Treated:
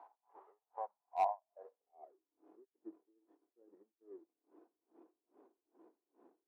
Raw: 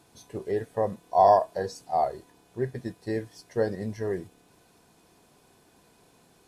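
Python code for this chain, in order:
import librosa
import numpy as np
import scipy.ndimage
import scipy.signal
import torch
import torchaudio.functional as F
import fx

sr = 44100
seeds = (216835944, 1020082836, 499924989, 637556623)

y = x + 0.5 * 10.0 ** (-27.5 / 20.0) * np.sign(x)
y = scipy.signal.sosfilt(scipy.signal.cheby1(2, 1.0, [250.0, 1000.0], 'bandpass', fs=sr, output='sos'), y)
y = np.diff(y, prepend=0.0)
y = fx.transient(y, sr, attack_db=9, sustain_db=-10)
y = fx.filter_sweep_bandpass(y, sr, from_hz=830.0, to_hz=330.0, start_s=1.38, end_s=2.11, q=4.9)
y = np.clip(y, -10.0 ** (-30.0 / 20.0), 10.0 ** (-30.0 / 20.0))
y = y * 10.0 ** (-33 * (0.5 - 0.5 * np.cos(2.0 * np.pi * 2.4 * np.arange(len(y)) / sr)) / 20.0)
y = F.gain(torch.from_numpy(y), 8.0).numpy()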